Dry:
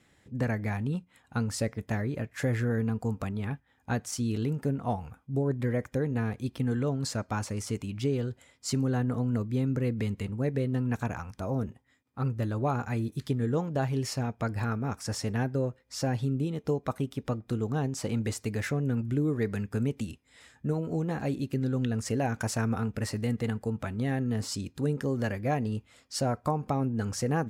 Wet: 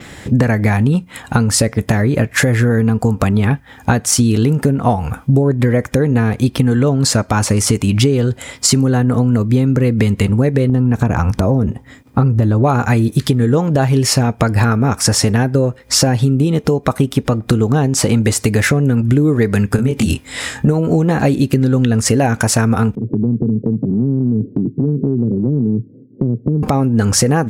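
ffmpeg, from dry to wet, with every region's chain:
-filter_complex "[0:a]asettb=1/sr,asplit=3[a][b][c];[a]atrim=end=10.694[d];[b]atrim=start=10.69:end=12.64,asetpts=PTS-STARTPTS,afade=t=in:d=0.004:c=qsin,afade=t=out:st=1.946:d=0.004:c=qsin,tiltshelf=f=770:g=4.5,acompressor=threshold=-27dB:ratio=2.5:attack=3.2:release=140:knee=1:detection=peak[e];[c]atrim=start=12.636[f];[d][e]acrossfade=d=0.004:c1=hsin:c2=qsin[g];[g][f]acrossfade=d=0.004:c1=qsin:c2=hsin,asettb=1/sr,asplit=3[h][i][j];[h]atrim=end=19.764[k];[i]atrim=start=19.76:end=20.68,asetpts=PTS-STARTPTS,afade=t=in:d=0.004:c=qsin,afade=t=out:st=0.916:d=0.004:c=qsin,acompressor=threshold=-34dB:ratio=2.5:attack=3.2:release=140:knee=1:detection=peak,asplit=2[l][m];[m]adelay=23,volume=-3.5dB[n];[l][n]amix=inputs=2:normalize=0,atrim=end_sample=40572[o];[j]atrim=start=20.676[p];[k][o]acrossfade=d=0.004:c1=hsin:c2=qsin[q];[q][p]acrossfade=d=0.004:c1=qsin:c2=hsin,asettb=1/sr,asplit=3[r][s][t];[r]atrim=end=22.954[u];[s]atrim=start=22.95:end=26.63,asetpts=PTS-STARTPTS,afade=t=in:d=0.004:c=qsin,afade=t=out:st=3.676:d=0.004:c=qsin,asuperpass=centerf=220:order=12:qfactor=0.71,acompressor=threshold=-43dB:ratio=4:attack=3.2:release=140:knee=1:detection=peak[v];[t]atrim=start=26.626[w];[u][v]acrossfade=d=0.004:c1=hsin:c2=qsin[x];[x][w]acrossfade=d=0.004:c1=qsin:c2=hsin,adynamicequalizer=threshold=0.00112:dfrequency=9900:dqfactor=1.8:tfrequency=9900:tqfactor=1.8:attack=5:release=100:ratio=0.375:range=2:mode=boostabove:tftype=bell,acompressor=threshold=-39dB:ratio=10,alimiter=level_in=30.5dB:limit=-1dB:release=50:level=0:latency=1,volume=-1dB"

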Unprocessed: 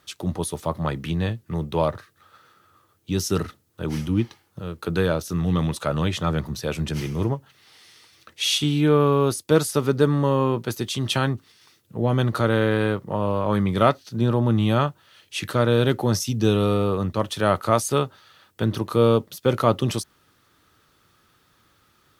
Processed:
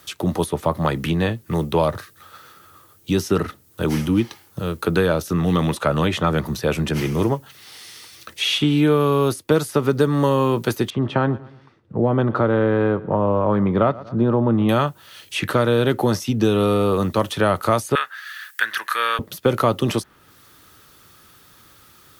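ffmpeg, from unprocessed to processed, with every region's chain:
-filter_complex "[0:a]asettb=1/sr,asplit=3[a][b][c];[a]atrim=end=10.904[d];[b]atrim=start=10.9:end=14.69,asetpts=PTS-STARTPTS,afade=t=in:d=0.004:c=qsin,afade=t=out:st=3.786:d=0.004:c=qsin,lowpass=1.2k,aecho=1:1:118|236|354:0.0794|0.0302|0.0115,atrim=end_sample=167139[e];[c]atrim=start=14.686[f];[d][e]acrossfade=d=0.004:c1=hsin:c2=qsin[g];[g][f]acrossfade=d=0.004:c1=qsin:c2=hsin,asettb=1/sr,asplit=3[h][i][j];[h]atrim=end=17.954[k];[i]atrim=start=17.95:end=19.19,asetpts=PTS-STARTPTS,afade=t=in:d=0.004:c=qsin,afade=t=out:st=1.236:d=0.004:c=qsin,highpass=f=1.7k:t=q:w=7,highshelf=f=5.2k:g=5[l];[j]atrim=start=19.186[m];[k][l]acrossfade=d=0.004:c1=hsin:c2=qsin[n];[n][m]acrossfade=d=0.004:c1=qsin:c2=hsin,highshelf=f=7.3k:g=10,acrossover=split=200|2800[o][p][q];[o]acompressor=threshold=-35dB:ratio=4[r];[p]acompressor=threshold=-24dB:ratio=4[s];[q]acompressor=threshold=-46dB:ratio=4[t];[r][s][t]amix=inputs=3:normalize=0,volume=8.5dB"

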